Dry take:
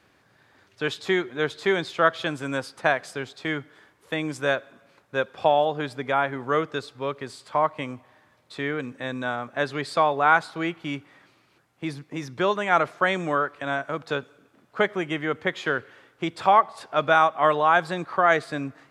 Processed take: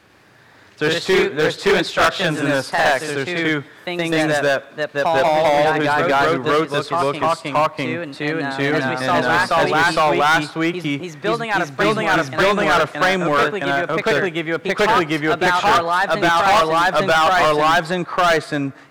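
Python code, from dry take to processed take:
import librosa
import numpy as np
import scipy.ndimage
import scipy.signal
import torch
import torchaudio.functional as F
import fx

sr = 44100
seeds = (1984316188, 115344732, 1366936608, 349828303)

y = fx.echo_pitch(x, sr, ms=99, semitones=1, count=2, db_per_echo=-3.0)
y = np.clip(y, -10.0 ** (-19.5 / 20.0), 10.0 ** (-19.5 / 20.0))
y = F.gain(torch.from_numpy(y), 8.5).numpy()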